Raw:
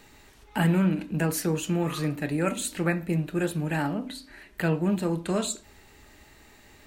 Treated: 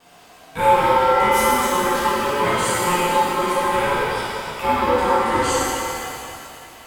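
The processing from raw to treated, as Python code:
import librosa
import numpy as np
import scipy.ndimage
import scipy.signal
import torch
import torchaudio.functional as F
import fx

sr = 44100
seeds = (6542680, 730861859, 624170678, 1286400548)

y = fx.vibrato(x, sr, rate_hz=2.5, depth_cents=62.0)
y = y * np.sin(2.0 * np.pi * 710.0 * np.arange(len(y)) / sr)
y = fx.rev_shimmer(y, sr, seeds[0], rt60_s=2.6, semitones=7, shimmer_db=-8, drr_db=-10.0)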